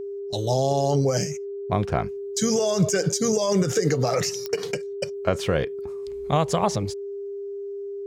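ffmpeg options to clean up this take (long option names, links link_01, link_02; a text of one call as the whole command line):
ffmpeg -i in.wav -af "adeclick=threshold=4,bandreject=frequency=400:width=30" out.wav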